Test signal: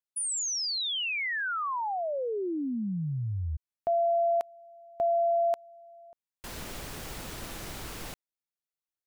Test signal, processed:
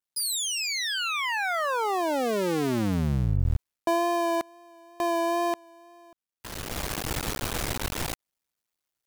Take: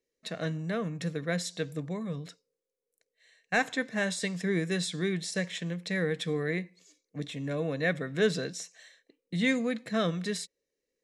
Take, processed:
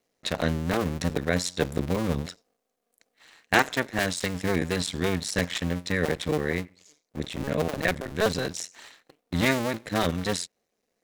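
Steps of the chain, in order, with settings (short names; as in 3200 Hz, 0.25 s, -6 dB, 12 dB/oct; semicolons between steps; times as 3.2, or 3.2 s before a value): cycle switcher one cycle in 2, muted; wow and flutter 23 cents; vocal rider within 5 dB 0.5 s; gain +7 dB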